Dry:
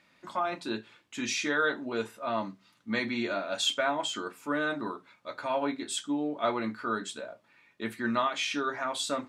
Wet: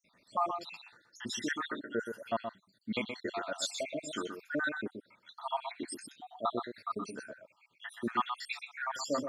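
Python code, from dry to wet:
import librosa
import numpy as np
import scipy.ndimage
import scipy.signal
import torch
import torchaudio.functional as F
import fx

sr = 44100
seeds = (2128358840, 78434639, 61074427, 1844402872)

p1 = fx.spec_dropout(x, sr, seeds[0], share_pct=74)
y = p1 + fx.echo_single(p1, sr, ms=124, db=-7.0, dry=0)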